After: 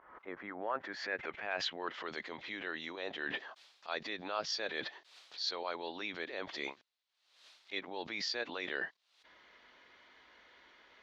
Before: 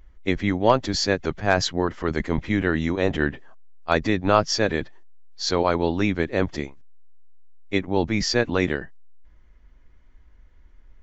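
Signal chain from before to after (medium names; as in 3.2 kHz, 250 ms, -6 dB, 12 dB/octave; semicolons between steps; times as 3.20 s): low-pass sweep 1.2 kHz -> 4 kHz, 0.29–2.14 s; reverse; compression 16:1, threshold -40 dBFS, peak gain reduction 31.5 dB; reverse; high-pass 550 Hz 12 dB/octave; swell ahead of each attack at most 76 dB/s; trim +8.5 dB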